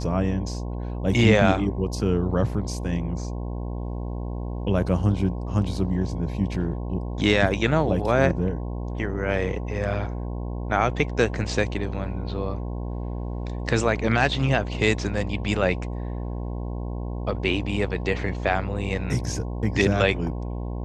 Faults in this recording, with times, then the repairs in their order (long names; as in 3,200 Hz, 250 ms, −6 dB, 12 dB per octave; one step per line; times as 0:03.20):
mains buzz 60 Hz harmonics 18 −30 dBFS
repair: hum removal 60 Hz, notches 18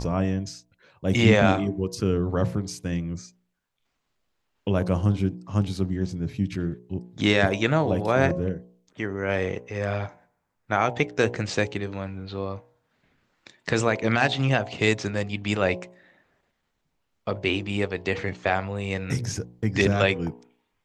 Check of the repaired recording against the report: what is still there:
none of them is left